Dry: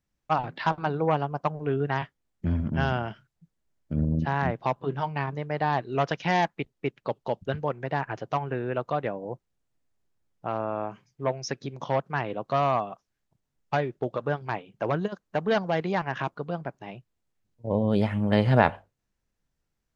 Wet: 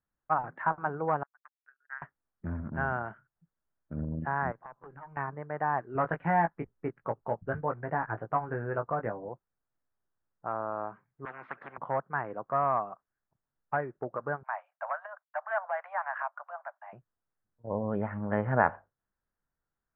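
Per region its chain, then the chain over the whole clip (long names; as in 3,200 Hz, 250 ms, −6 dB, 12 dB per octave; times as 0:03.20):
0:01.23–0:02.02: four-pole ladder high-pass 1,500 Hz, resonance 75% + power curve on the samples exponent 2
0:04.52–0:05.17: high-shelf EQ 3,500 Hz +9.5 dB + downward compressor 8 to 1, threshold −32 dBFS + tube saturation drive 28 dB, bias 0.8
0:05.95–0:09.29: low-shelf EQ 200 Hz +9.5 dB + double-tracking delay 18 ms −6 dB
0:11.25–0:11.78: high-pass filter 200 Hz + every bin compressed towards the loudest bin 10 to 1
0:14.43–0:16.93: downward expander −55 dBFS + Butterworth high-pass 590 Hz 96 dB per octave + transient designer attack −1 dB, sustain +4 dB
whole clip: Butterworth low-pass 1,600 Hz 36 dB per octave; tilt shelving filter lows −8 dB; level −2 dB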